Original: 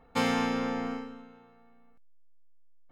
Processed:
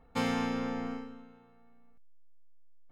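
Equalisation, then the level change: bass shelf 180 Hz +7 dB; -5.0 dB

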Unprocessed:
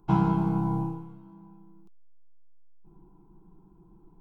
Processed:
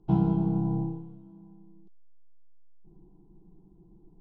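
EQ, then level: distance through air 150 m; high-order bell 1.5 kHz -12.5 dB; treble shelf 3.5 kHz -7 dB; 0.0 dB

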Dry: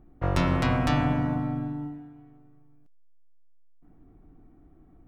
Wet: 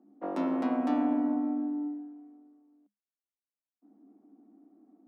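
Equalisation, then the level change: rippled Chebyshev high-pass 200 Hz, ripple 6 dB; tilt shelf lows +9.5 dB, about 740 Hz; -3.5 dB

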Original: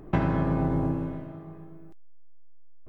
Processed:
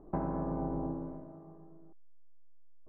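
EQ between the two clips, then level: four-pole ladder low-pass 1.2 kHz, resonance 25%; peaking EQ 110 Hz -15 dB 0.55 oct; -2.0 dB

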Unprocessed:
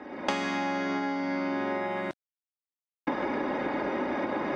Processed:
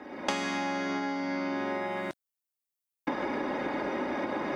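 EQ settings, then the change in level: treble shelf 6.7 kHz +12 dB; -2.0 dB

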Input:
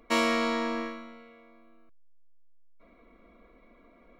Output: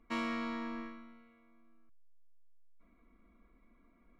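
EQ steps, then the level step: low-pass 1.1 kHz 6 dB/octave; peaking EQ 540 Hz -14 dB 1.2 oct; -4.0 dB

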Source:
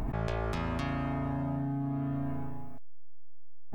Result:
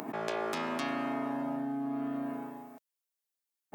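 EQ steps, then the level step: high-pass 240 Hz 24 dB/octave; treble shelf 5.7 kHz +7 dB; +2.0 dB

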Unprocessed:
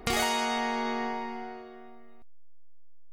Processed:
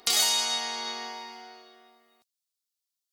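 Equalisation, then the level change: high-pass 1.3 kHz 6 dB/octave; resonant high shelf 3 kHz +9.5 dB, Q 1.5; 0.0 dB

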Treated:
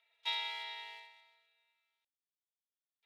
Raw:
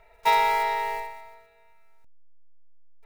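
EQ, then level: band-pass filter 3.4 kHz, Q 5.6; +1.0 dB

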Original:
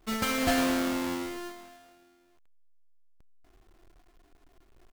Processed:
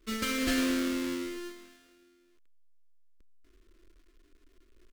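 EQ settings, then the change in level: treble shelf 11 kHz -6 dB; static phaser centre 320 Hz, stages 4; 0.0 dB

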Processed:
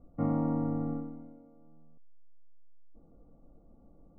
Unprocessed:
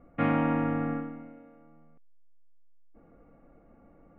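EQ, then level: Savitzky-Golay filter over 65 samples; distance through air 240 m; tilt EQ -2 dB/octave; -6.5 dB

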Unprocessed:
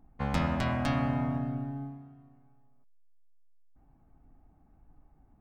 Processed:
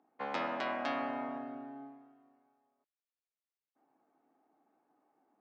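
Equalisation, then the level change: high-pass 320 Hz 24 dB/octave; low-pass 5.8 kHz 12 dB/octave; distance through air 83 m; -1.5 dB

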